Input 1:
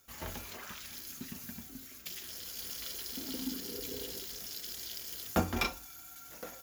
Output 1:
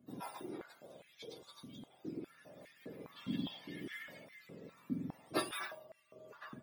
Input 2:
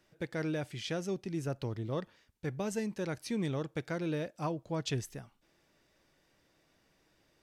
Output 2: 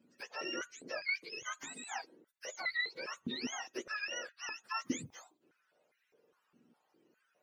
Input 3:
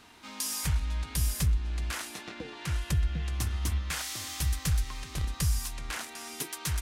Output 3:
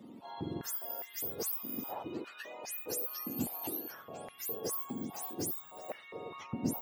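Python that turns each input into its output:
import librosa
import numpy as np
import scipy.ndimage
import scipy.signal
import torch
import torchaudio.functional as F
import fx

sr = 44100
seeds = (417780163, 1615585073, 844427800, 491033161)

y = fx.octave_mirror(x, sr, pivot_hz=930.0)
y = fx.filter_held_highpass(y, sr, hz=4.9, low_hz=250.0, high_hz=2000.0)
y = y * librosa.db_to_amplitude(-4.0)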